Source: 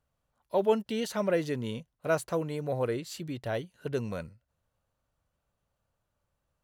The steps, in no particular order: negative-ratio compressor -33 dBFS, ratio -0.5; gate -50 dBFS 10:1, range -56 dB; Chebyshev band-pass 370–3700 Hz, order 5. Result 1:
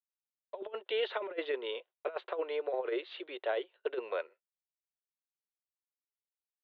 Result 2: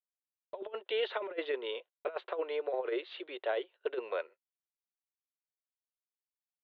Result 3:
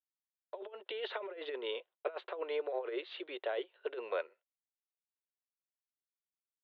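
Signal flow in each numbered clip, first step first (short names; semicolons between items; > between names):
gate > Chebyshev band-pass > negative-ratio compressor; Chebyshev band-pass > negative-ratio compressor > gate; negative-ratio compressor > gate > Chebyshev band-pass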